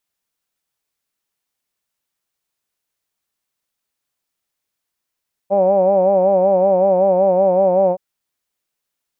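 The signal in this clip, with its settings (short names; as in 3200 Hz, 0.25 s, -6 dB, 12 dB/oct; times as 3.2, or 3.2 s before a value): formant-synthesis vowel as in hawed, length 2.47 s, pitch 192 Hz, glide -0.5 st, vibrato depth 0.8 st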